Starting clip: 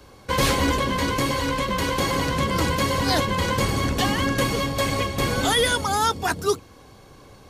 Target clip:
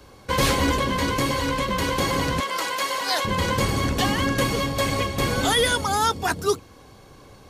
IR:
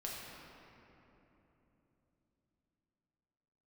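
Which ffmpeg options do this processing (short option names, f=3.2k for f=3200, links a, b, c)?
-filter_complex "[0:a]asettb=1/sr,asplit=3[a][b][c];[a]atrim=end=2.404[d];[b]atrim=start=2.4:end=3.25,asetpts=PTS-STARTPTS,afade=t=in:d=0.004:c=qsin,afade=t=out:st=0.846:d=0.004:c=qsin,highpass=660[e];[c]atrim=start=3.246[f];[d][e]acrossfade=d=0.004:c1=hsin:c2=qsin[g];[g][f]acrossfade=d=0.004:c1=qsin:c2=hsin"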